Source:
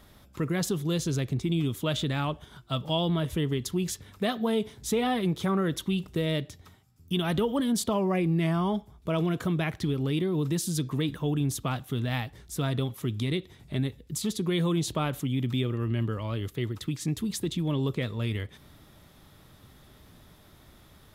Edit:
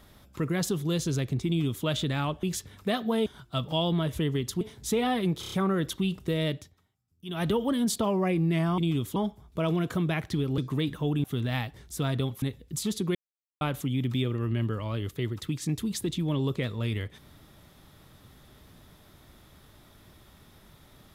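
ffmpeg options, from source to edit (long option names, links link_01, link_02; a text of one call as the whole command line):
ffmpeg -i in.wav -filter_complex "[0:a]asplit=17[link_01][link_02][link_03][link_04][link_05][link_06][link_07][link_08][link_09][link_10][link_11][link_12][link_13][link_14][link_15][link_16][link_17];[link_01]atrim=end=2.432[link_18];[link_02]atrim=start=3.778:end=4.612[link_19];[link_03]atrim=start=2.428:end=3.782[link_20];[link_04]atrim=start=4.608:end=5.432[link_21];[link_05]atrim=start=5.398:end=5.432[link_22];[link_06]atrim=start=5.398:end=5.432[link_23];[link_07]atrim=start=5.398:end=5.432[link_24];[link_08]atrim=start=5.398:end=6.64,asetpts=PTS-STARTPTS,afade=type=out:start_time=1.042:duration=0.2:silence=0.158489[link_25];[link_09]atrim=start=6.64:end=7.13,asetpts=PTS-STARTPTS,volume=-16dB[link_26];[link_10]atrim=start=7.13:end=8.662,asetpts=PTS-STARTPTS,afade=type=in:duration=0.2:silence=0.158489[link_27];[link_11]atrim=start=1.468:end=1.852[link_28];[link_12]atrim=start=8.658:end=10.082[link_29];[link_13]atrim=start=10.788:end=11.452[link_30];[link_14]atrim=start=11.828:end=13.012[link_31];[link_15]atrim=start=13.808:end=14.54,asetpts=PTS-STARTPTS,afade=type=out:start_time=0.728:duration=0.004:curve=hsin[link_32];[link_16]atrim=start=14.54:end=15,asetpts=PTS-STARTPTS,volume=0[link_33];[link_17]atrim=start=15,asetpts=PTS-STARTPTS,afade=type=in:duration=0.004:curve=hsin[link_34];[link_18][link_19]acrossfade=duration=0.004:curve1=hsin:curve2=hsin[link_35];[link_35][link_20]acrossfade=duration=0.004:curve1=hsin:curve2=hsin[link_36];[link_36][link_21]acrossfade=duration=0.004:curve1=hsin:curve2=hsin[link_37];[link_37][link_22]acrossfade=duration=0.004:curve1=hsin:curve2=hsin[link_38];[link_38][link_23]acrossfade=duration=0.004:curve1=hsin:curve2=hsin[link_39];[link_39][link_24]acrossfade=duration=0.004:curve1=hsin:curve2=hsin[link_40];[link_25][link_26][link_27]concat=n=3:v=0:a=1[link_41];[link_40][link_41]acrossfade=duration=0.004:curve1=hsin:curve2=hsin[link_42];[link_42][link_28]acrossfade=duration=0.004:curve1=hsin:curve2=hsin[link_43];[link_43][link_29]acrossfade=duration=0.004:curve1=hsin:curve2=hsin[link_44];[link_44][link_30]acrossfade=duration=0.004:curve1=hsin:curve2=hsin[link_45];[link_45][link_31]acrossfade=duration=0.004:curve1=hsin:curve2=hsin[link_46];[link_32][link_33][link_34]concat=n=3:v=0:a=1[link_47];[link_46][link_47]acrossfade=duration=0.004:curve1=hsin:curve2=hsin" out.wav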